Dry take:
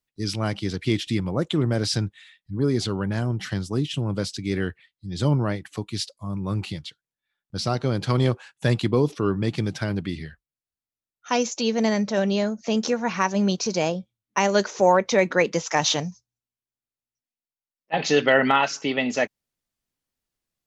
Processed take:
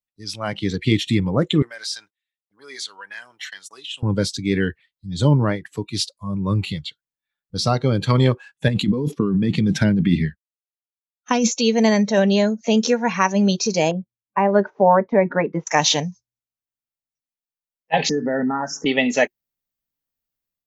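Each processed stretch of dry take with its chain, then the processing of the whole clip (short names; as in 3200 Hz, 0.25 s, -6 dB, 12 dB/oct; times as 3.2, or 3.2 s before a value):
1.62–4.03 gate -37 dBFS, range -32 dB + HPF 1200 Hz + compressor 2:1, threshold -35 dBFS
8.68–11.52 expander -36 dBFS + bell 200 Hz +9.5 dB 0.85 oct + negative-ratio compressor -23 dBFS
13.91–15.67 LPF 1200 Hz + notch 500 Hz, Q 5.4 + gate -41 dBFS, range -8 dB
18.09–18.86 Chebyshev band-stop 1800–5000 Hz, order 4 + bell 210 Hz +14 dB 1.9 oct + compressor 3:1, threshold -29 dBFS
whole clip: notch 360 Hz, Q 12; AGC gain up to 6.5 dB; spectral noise reduction 11 dB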